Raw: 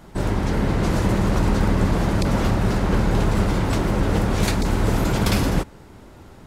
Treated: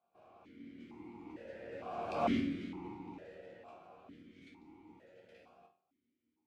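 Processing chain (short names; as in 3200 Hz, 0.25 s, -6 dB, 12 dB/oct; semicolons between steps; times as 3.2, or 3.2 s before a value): Doppler pass-by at 2.25, 16 m/s, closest 1.7 m; resonator bank D#2 minor, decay 0.38 s; vowel sequencer 2.2 Hz; gain +16.5 dB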